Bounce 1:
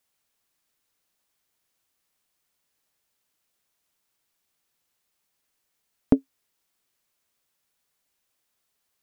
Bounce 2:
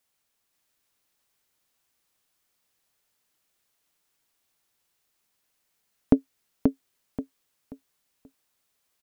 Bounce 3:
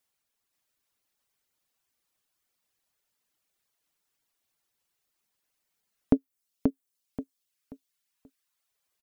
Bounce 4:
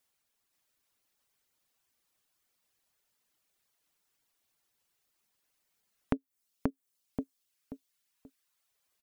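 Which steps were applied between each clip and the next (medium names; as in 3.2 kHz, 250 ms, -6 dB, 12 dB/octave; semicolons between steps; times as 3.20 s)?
feedback delay 532 ms, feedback 29%, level -3.5 dB
reverb removal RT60 0.81 s; trim -3 dB
compression, threshold -29 dBFS, peak gain reduction 13 dB; trim +1.5 dB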